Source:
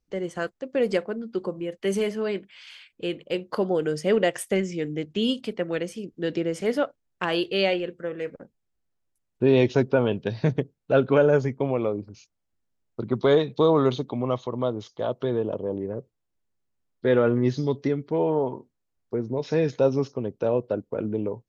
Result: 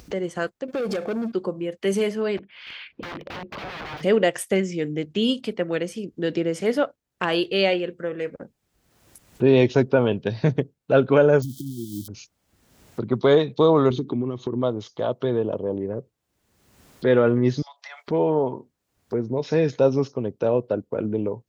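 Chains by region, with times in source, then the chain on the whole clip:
0.68–1.32 s: compression, threshold -31 dBFS + waveshaping leveller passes 3 + comb of notches 970 Hz
2.37–4.03 s: compression 3:1, threshold -31 dBFS + integer overflow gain 35.5 dB + distance through air 290 m
11.42–12.08 s: zero-crossing glitches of -26.5 dBFS + compression, threshold -27 dBFS + brick-wall FIR band-stop 360–3000 Hz
13.90–14.63 s: compression, threshold -32 dBFS + resonant low shelf 460 Hz +7 dB, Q 3
17.62–18.08 s: steep high-pass 670 Hz 72 dB/octave + compression 3:1, threshold -47 dBFS
whole clip: high-pass 44 Hz; upward compressor, threshold -29 dBFS; trim +2.5 dB

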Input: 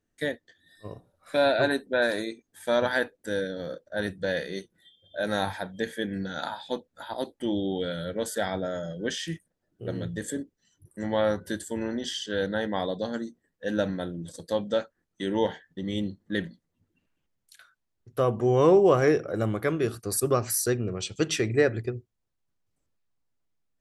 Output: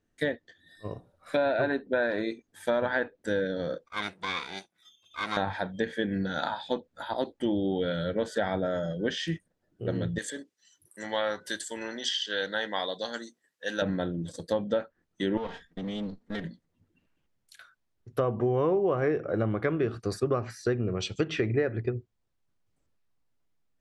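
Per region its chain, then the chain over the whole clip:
3.86–5.37 s: comb filter that takes the minimum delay 0.85 ms + high-pass 990 Hz 6 dB/octave
10.18–13.82 s: high-pass 1.1 kHz 6 dB/octave + treble shelf 3 kHz +9 dB
15.37–16.44 s: comb filter that takes the minimum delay 4.3 ms + compression 3:1, threshold -35 dBFS
whole clip: low-pass that closes with the level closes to 2.6 kHz, closed at -23.5 dBFS; treble shelf 6.8 kHz -8 dB; compression 6:1, threshold -26 dBFS; trim +3 dB

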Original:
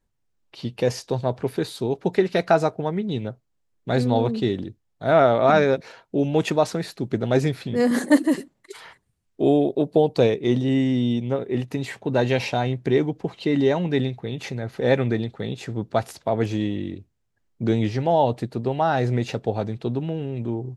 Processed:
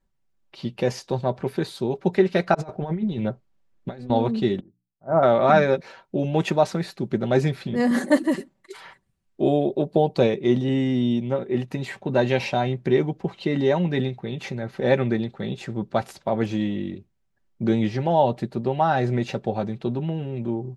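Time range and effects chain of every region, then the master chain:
2.54–4.10 s: treble shelf 7.5 kHz -9 dB + compressor with a negative ratio -28 dBFS, ratio -0.5
4.60–5.23 s: low-pass 1.2 kHz 24 dB/octave + hum notches 60/120/180/240/300 Hz + upward expansion 2.5:1, over -26 dBFS
whole clip: treble shelf 5.2 kHz -7 dB; band-stop 420 Hz, Q 12; comb 5.2 ms, depth 41%

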